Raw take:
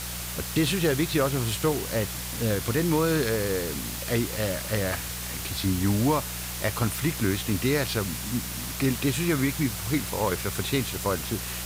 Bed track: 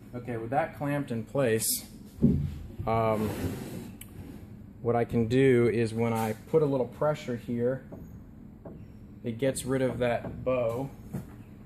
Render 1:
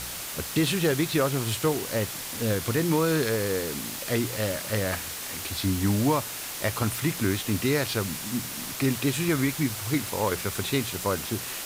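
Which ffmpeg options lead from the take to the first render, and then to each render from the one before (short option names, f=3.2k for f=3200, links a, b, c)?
-af "bandreject=f=60:t=h:w=4,bandreject=f=120:t=h:w=4,bandreject=f=180:t=h:w=4"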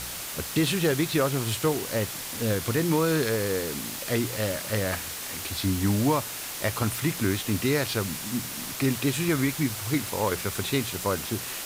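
-af anull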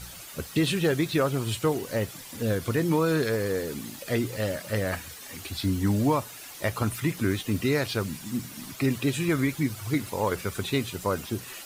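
-af "afftdn=nr=11:nf=-36"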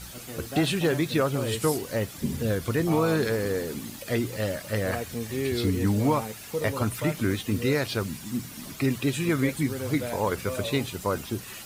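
-filter_complex "[1:a]volume=-6.5dB[a];[0:a][a]amix=inputs=2:normalize=0"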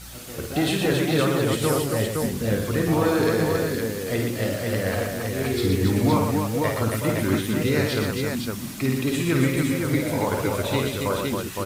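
-af "aecho=1:1:53|120|275|514:0.562|0.562|0.596|0.668"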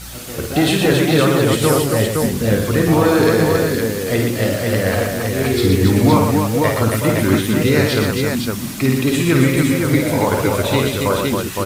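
-af "volume=7.5dB,alimiter=limit=-2dB:level=0:latency=1"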